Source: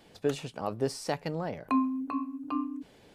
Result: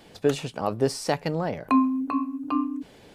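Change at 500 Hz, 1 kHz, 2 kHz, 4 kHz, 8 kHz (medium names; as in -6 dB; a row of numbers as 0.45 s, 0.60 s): +6.5 dB, +6.5 dB, +6.5 dB, +6.5 dB, +6.5 dB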